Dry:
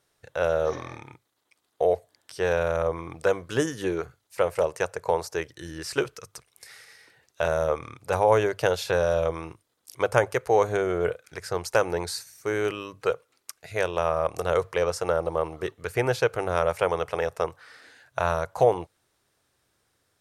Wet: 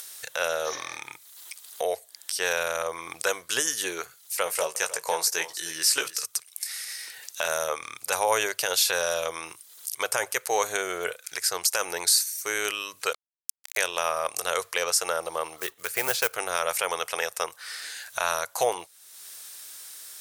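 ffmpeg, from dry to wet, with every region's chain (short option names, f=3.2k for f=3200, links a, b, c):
-filter_complex "[0:a]asettb=1/sr,asplit=3[a][b][c];[a]atrim=end=4.444[d];[b]atrim=start=4.44:end=6.26,asetpts=PTS-STARTPTS,afade=t=in:d=0.004:c=qsin,afade=t=out:st=1.816:d=0.004:c=qsin,asplit=2[e][f];[f]adelay=18,volume=-7.5dB[g];[e][g]amix=inputs=2:normalize=0,atrim=end_sample=80262,aecho=1:1:308:0.168,atrim=end_sample=80262[h];[c]atrim=start=6.256[i];[d][h]acrossfade=d=0.004:c1=hsin:c2=qsin[j];[j][i]acrossfade=d=0.004:c1=qsin:c2=hsin,asettb=1/sr,asplit=3[k][l][m];[k]atrim=end=13.134[n];[l]atrim=start=13.13:end=13.77,asetpts=PTS-STARTPTS,afade=t=in:d=0.004:c=qsin,afade=t=out:st=0.636:d=0.004:c=qsin,highpass=f=570:w=0.5412,highpass=f=570:w=1.3066,tremolo=f=63:d=0.824,acrusher=bits=5:mix=0:aa=0.5[o];[m]atrim=start=13.766[p];[n][o]acrossfade=d=0.004:c1=hsin:c2=qsin[q];[q][p]acrossfade=d=0.004:c1=qsin:c2=hsin,asettb=1/sr,asplit=3[r][s][t];[r]atrim=end=15.584[u];[s]atrim=start=15.58:end=16.35,asetpts=PTS-STARTPTS,afade=t=in:d=0.004:c=qsin,afade=t=out:st=0.766:d=0.004:c=qsin,highpass=43,highshelf=f=3.6k:g=-9.5,acrusher=bits=6:mode=log:mix=0:aa=0.000001[v];[t]atrim=start=16.346[w];[u][v]acrossfade=d=0.004:c1=hsin:c2=qsin[x];[x][w]acrossfade=d=0.004:c1=qsin:c2=hsin,aderivative,acompressor=mode=upward:threshold=-45dB:ratio=2.5,alimiter=level_in=25.5dB:limit=-1dB:release=50:level=0:latency=1,volume=-9dB"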